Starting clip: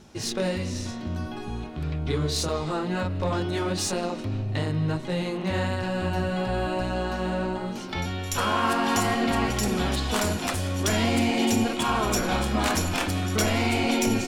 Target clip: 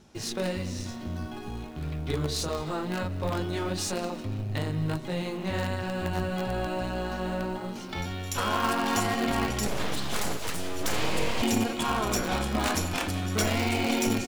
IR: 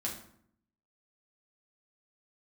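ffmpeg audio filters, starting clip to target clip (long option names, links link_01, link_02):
-filter_complex "[0:a]asettb=1/sr,asplit=3[link_01][link_02][link_03];[link_01]atrim=end=9.674[link_04];[link_02]atrim=start=9.67:end=11.42,asetpts=PTS-STARTPTS,afade=type=in:duration=0.004:curve=qsin,afade=type=out:start_time=1.746:duration=0.004:curve=qsin,aeval=exprs='abs(val(0))':channel_layout=same[link_05];[link_03]atrim=start=11.416[link_06];[link_04][link_05]acrossfade=duration=0.004:curve1=hsin:curve2=qsin[link_07];[link_07][link_06]acrossfade=duration=0.004:curve1=qsin:curve2=hsin,asplit=2[link_08][link_09];[link_09]acrusher=bits=4:dc=4:mix=0:aa=0.000001,volume=-7dB[link_10];[link_08][link_10]amix=inputs=2:normalize=0,aecho=1:1:185:0.0891,volume=-5.5dB"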